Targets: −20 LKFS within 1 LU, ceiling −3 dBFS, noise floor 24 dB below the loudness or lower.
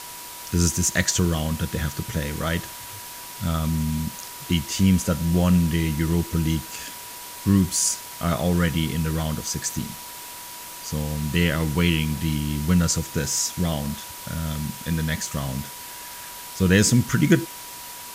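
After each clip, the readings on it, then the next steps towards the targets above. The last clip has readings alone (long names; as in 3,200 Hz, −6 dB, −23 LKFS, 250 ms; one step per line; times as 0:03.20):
interfering tone 970 Hz; level of the tone −43 dBFS; background noise floor −38 dBFS; target noise floor −48 dBFS; integrated loudness −23.5 LKFS; sample peak −4.5 dBFS; target loudness −20.0 LKFS
→ notch filter 970 Hz, Q 30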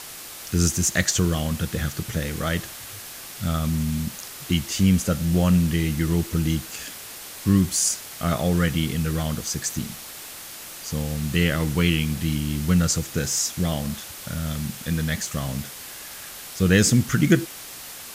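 interfering tone none found; background noise floor −39 dBFS; target noise floor −48 dBFS
→ broadband denoise 9 dB, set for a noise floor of −39 dBFS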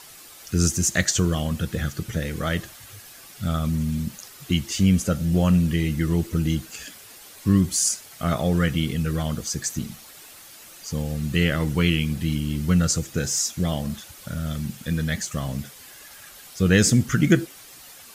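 background noise floor −46 dBFS; target noise floor −48 dBFS
→ broadband denoise 6 dB, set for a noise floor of −46 dBFS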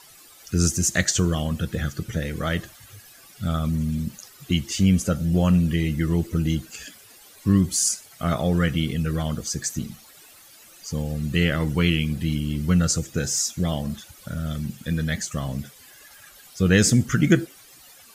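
background noise floor −50 dBFS; integrated loudness −23.5 LKFS; sample peak −4.5 dBFS; target loudness −20.0 LKFS
→ level +3.5 dB
brickwall limiter −3 dBFS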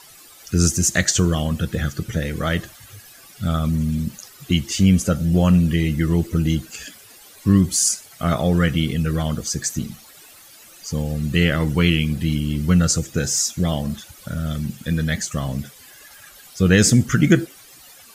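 integrated loudness −20.0 LKFS; sample peak −3.0 dBFS; background noise floor −46 dBFS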